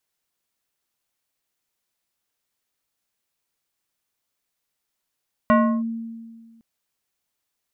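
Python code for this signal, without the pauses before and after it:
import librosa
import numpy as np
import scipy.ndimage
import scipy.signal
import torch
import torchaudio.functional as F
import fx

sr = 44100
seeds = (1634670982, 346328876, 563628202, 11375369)

y = fx.fm2(sr, length_s=1.11, level_db=-11.0, carrier_hz=228.0, ratio=3.72, index=1.3, index_s=0.33, decay_s=1.7, shape='linear')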